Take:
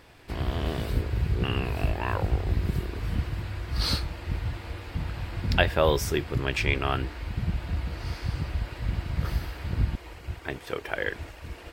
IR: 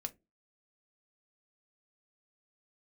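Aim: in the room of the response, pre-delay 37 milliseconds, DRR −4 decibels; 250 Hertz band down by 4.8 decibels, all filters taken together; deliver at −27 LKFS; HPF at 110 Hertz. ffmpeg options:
-filter_complex "[0:a]highpass=110,equalizer=frequency=250:width_type=o:gain=-7,asplit=2[link_01][link_02];[1:a]atrim=start_sample=2205,adelay=37[link_03];[link_02][link_03]afir=irnorm=-1:irlink=0,volume=6dB[link_04];[link_01][link_04]amix=inputs=2:normalize=0"

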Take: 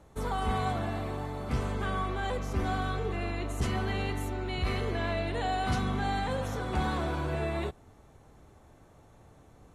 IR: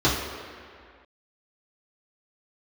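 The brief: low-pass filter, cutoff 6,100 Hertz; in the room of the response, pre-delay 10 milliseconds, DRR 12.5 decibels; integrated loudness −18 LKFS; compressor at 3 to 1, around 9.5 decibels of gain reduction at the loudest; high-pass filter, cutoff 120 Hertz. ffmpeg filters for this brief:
-filter_complex "[0:a]highpass=120,lowpass=6100,acompressor=threshold=-41dB:ratio=3,asplit=2[link_01][link_02];[1:a]atrim=start_sample=2205,adelay=10[link_03];[link_02][link_03]afir=irnorm=-1:irlink=0,volume=-30.5dB[link_04];[link_01][link_04]amix=inputs=2:normalize=0,volume=23.5dB"

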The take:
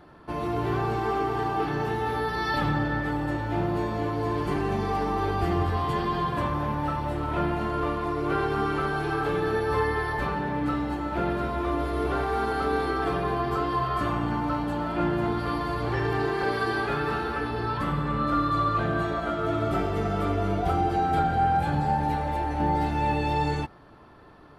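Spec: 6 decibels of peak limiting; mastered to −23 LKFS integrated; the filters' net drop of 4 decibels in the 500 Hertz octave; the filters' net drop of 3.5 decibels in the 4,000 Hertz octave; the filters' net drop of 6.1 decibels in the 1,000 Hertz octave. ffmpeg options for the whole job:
ffmpeg -i in.wav -af "equalizer=frequency=500:width_type=o:gain=-4,equalizer=frequency=1000:width_type=o:gain=-6.5,equalizer=frequency=4000:width_type=o:gain=-4,volume=8dB,alimiter=limit=-13.5dB:level=0:latency=1" out.wav

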